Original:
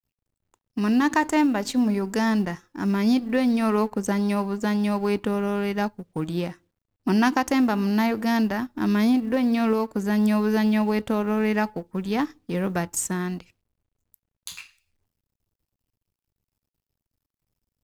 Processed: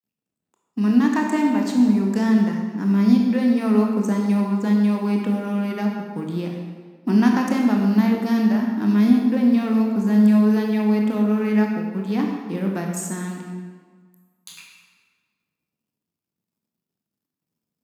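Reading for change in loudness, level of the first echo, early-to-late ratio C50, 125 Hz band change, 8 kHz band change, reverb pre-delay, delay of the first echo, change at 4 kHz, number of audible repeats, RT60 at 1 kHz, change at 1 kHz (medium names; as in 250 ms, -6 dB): +4.0 dB, no echo, 2.5 dB, +5.0 dB, no reading, 21 ms, no echo, -2.5 dB, no echo, 1.6 s, -2.0 dB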